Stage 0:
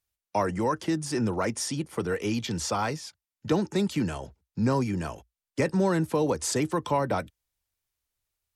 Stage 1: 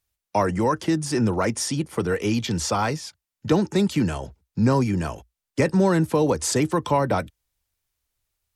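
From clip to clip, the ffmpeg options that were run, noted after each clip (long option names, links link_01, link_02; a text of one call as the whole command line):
ffmpeg -i in.wav -af "lowshelf=frequency=140:gain=3.5,volume=4.5dB" out.wav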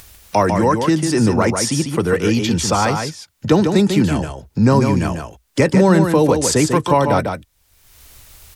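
ffmpeg -i in.wav -af "acompressor=mode=upward:threshold=-27dB:ratio=2.5,aecho=1:1:147:0.501,volume=6dB" out.wav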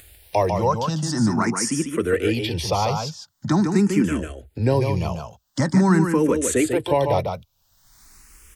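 ffmpeg -i in.wav -filter_complex "[0:a]asplit=2[link_01][link_02];[link_02]afreqshift=0.45[link_03];[link_01][link_03]amix=inputs=2:normalize=1,volume=-2.5dB" out.wav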